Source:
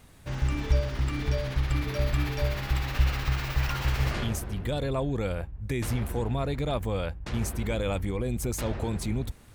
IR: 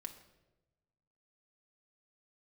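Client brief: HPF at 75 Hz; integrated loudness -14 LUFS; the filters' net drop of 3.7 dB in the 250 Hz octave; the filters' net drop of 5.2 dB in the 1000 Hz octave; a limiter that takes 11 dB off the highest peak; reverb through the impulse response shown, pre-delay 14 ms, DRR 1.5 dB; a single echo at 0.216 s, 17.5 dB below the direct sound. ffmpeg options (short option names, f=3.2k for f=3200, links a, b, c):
-filter_complex "[0:a]highpass=75,equalizer=f=250:t=o:g=-4.5,equalizer=f=1k:t=o:g=-7,alimiter=level_in=3dB:limit=-24dB:level=0:latency=1,volume=-3dB,aecho=1:1:216:0.133,asplit=2[a][b];[1:a]atrim=start_sample=2205,adelay=14[c];[b][c]afir=irnorm=-1:irlink=0,volume=2.5dB[d];[a][d]amix=inputs=2:normalize=0,volume=20dB"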